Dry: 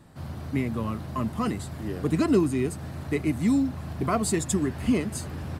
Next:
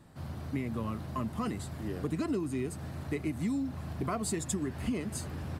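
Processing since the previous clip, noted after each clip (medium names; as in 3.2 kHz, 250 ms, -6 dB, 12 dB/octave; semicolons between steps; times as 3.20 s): compression 6:1, threshold -25 dBFS, peak gain reduction 9 dB; trim -4 dB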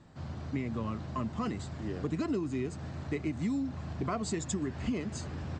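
steep low-pass 7.7 kHz 72 dB/octave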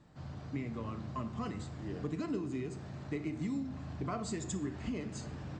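simulated room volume 300 m³, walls mixed, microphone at 0.42 m; trim -5 dB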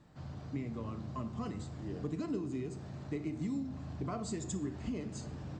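dynamic bell 1.9 kHz, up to -5 dB, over -58 dBFS, Q 0.71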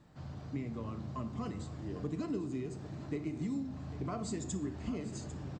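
delay 798 ms -13.5 dB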